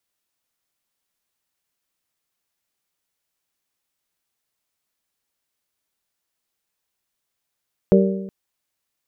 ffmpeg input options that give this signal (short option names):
-f lavfi -i "aevalsrc='0.282*pow(10,-3*t/1.01)*sin(2*PI*193*t)+0.224*pow(10,-3*t/0.82)*sin(2*PI*386*t)+0.178*pow(10,-3*t/0.777)*sin(2*PI*463.2*t)+0.141*pow(10,-3*t/0.726)*sin(2*PI*579*t)':d=0.37:s=44100"